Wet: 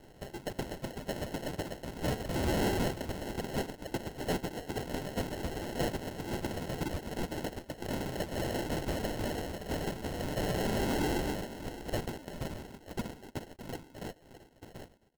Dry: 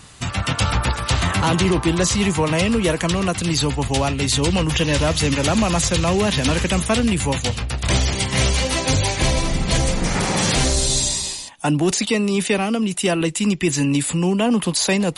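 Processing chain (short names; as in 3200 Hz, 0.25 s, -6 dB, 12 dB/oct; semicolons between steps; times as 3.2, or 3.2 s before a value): ending faded out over 3.74 s; passive tone stack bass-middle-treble 5-5-5; in parallel at -10 dB: crossover distortion -45 dBFS; on the sum: differentiator; 2.29–2.88 overdrive pedal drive 22 dB, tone 2400 Hz, clips at -15.5 dBFS; 2.29–2.92 spectral gain 1700–4000 Hz +12 dB; sample-and-hold 37×; soft clip -26 dBFS, distortion -9 dB; notch 1700 Hz, Q 13; on a send: echo 0.615 s -13 dB; on the sum: crackling interface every 0.66 s, samples 512, repeat, from 0.34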